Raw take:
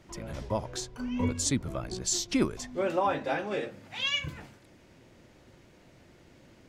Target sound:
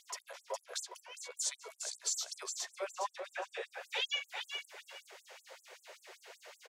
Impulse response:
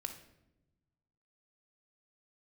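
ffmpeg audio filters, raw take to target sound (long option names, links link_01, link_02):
-filter_complex "[0:a]equalizer=frequency=62:width_type=o:width=0.54:gain=14,acompressor=threshold=-44dB:ratio=4,asplit=2[link_01][link_02];[link_02]aecho=0:1:412|824|1236:0.501|0.115|0.0265[link_03];[link_01][link_03]amix=inputs=2:normalize=0,afftfilt=real='re*gte(b*sr/1024,360*pow(7500/360,0.5+0.5*sin(2*PI*5.2*pts/sr)))':imag='im*gte(b*sr/1024,360*pow(7500/360,0.5+0.5*sin(2*PI*5.2*pts/sr)))':win_size=1024:overlap=0.75,volume=9dB"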